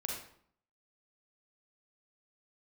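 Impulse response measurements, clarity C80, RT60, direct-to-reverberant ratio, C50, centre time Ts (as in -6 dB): 6.0 dB, 0.60 s, -1.0 dB, 1.5 dB, 45 ms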